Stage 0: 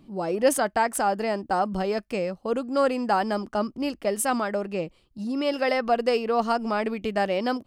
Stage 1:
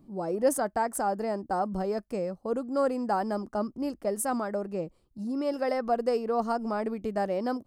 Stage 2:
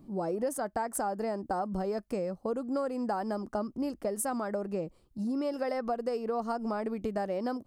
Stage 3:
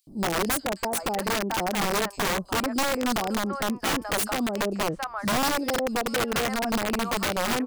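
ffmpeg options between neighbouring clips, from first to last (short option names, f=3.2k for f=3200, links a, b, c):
-af "equalizer=f=2.9k:w=0.98:g=-14.5,volume=-3dB"
-af "acompressor=threshold=-32dB:ratio=6,volume=3dB"
-filter_complex "[0:a]acrossover=split=810|3200[a][b][c];[a]adelay=70[d];[b]adelay=740[e];[d][e][c]amix=inputs=3:normalize=0,aeval=exprs='(mod(25.1*val(0)+1,2)-1)/25.1':c=same,volume=8dB"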